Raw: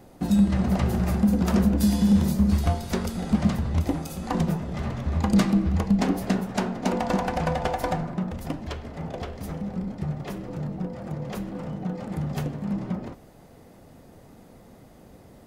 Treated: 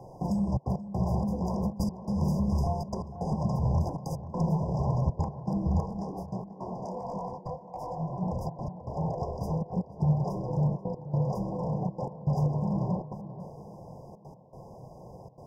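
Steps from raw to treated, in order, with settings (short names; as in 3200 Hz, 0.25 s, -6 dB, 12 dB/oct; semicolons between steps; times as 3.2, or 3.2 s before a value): step gate "xxxxxx.x..xx" 159 bpm -60 dB; brick-wall FIR band-stop 1100–4800 Hz; three-band isolator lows -21 dB, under 290 Hz, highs -19 dB, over 4500 Hz; compressor 4:1, threshold -33 dBFS, peak gain reduction 8.5 dB; limiter -31.5 dBFS, peak gain reduction 10 dB; resonant low shelf 190 Hz +11 dB, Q 3; tape echo 0.486 s, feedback 46%, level -11 dB, low-pass 1500 Hz; 5.86–8.23 detuned doubles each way 53 cents; gain +7.5 dB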